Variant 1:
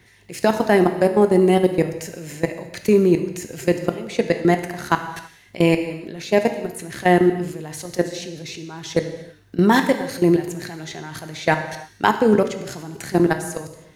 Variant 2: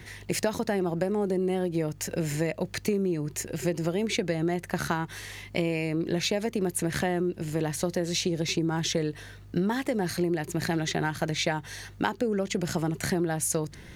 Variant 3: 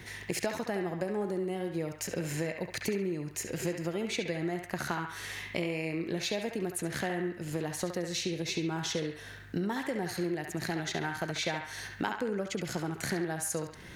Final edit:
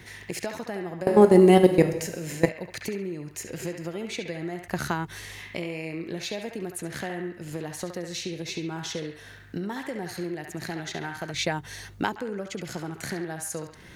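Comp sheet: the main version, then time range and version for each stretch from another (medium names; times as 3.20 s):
3
1.07–2.49 s: from 1
4.68–5.39 s: from 2
11.34–12.16 s: from 2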